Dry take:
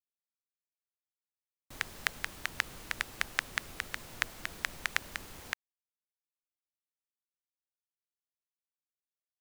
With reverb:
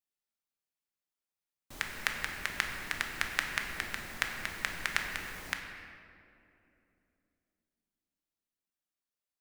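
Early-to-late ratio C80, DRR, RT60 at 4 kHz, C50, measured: 5.5 dB, 2.5 dB, 1.4 s, 4.5 dB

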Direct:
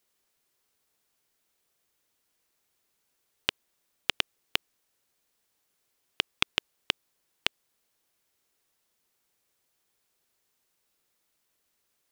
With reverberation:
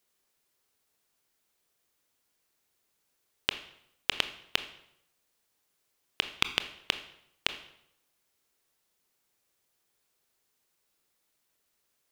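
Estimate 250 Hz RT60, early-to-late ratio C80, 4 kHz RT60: 0.75 s, 15.0 dB, 0.65 s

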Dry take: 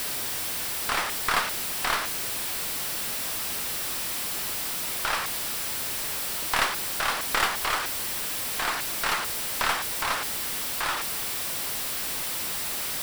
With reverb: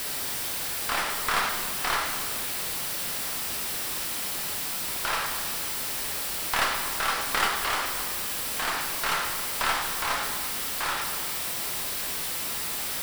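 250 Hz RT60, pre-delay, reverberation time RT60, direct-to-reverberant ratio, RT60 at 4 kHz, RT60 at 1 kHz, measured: 1.7 s, 8 ms, 1.7 s, 3.0 dB, 1.3 s, 1.7 s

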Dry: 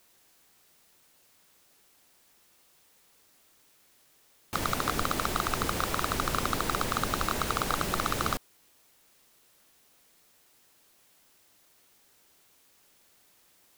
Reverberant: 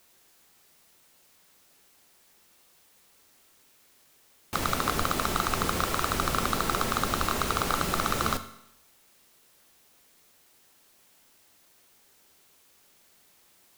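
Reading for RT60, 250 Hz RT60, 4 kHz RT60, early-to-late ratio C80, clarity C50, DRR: 0.75 s, 0.75 s, 0.75 s, 15.0 dB, 13.0 dB, 9.0 dB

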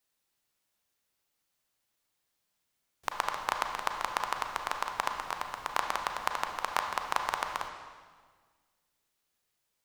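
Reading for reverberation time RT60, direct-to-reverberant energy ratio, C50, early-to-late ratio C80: 1.6 s, 4.0 dB, 5.0 dB, 6.5 dB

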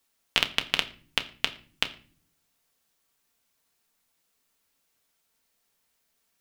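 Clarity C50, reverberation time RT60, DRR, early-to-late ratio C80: 17.0 dB, non-exponential decay, 6.0 dB, 20.0 dB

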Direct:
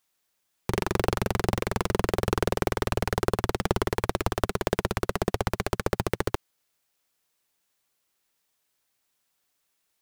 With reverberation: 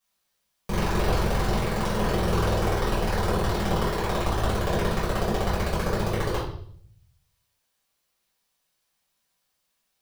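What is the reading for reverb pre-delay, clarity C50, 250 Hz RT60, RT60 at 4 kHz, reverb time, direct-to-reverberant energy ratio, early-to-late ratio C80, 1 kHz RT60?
4 ms, 3.5 dB, 0.80 s, 0.60 s, 0.60 s, −9.5 dB, 8.0 dB, 0.55 s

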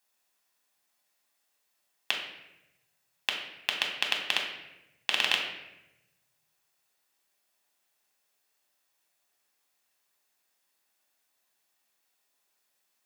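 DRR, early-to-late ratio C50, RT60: 0.0 dB, 5.0 dB, 0.95 s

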